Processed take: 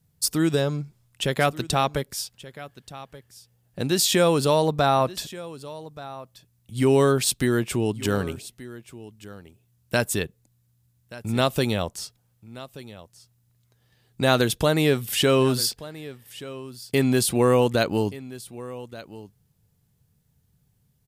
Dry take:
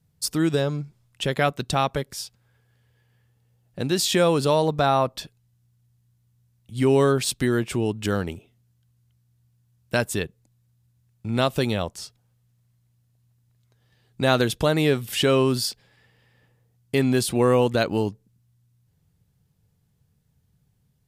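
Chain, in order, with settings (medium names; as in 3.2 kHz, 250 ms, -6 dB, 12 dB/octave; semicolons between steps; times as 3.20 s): treble shelf 8 kHz +7 dB; on a send: delay 1179 ms -17.5 dB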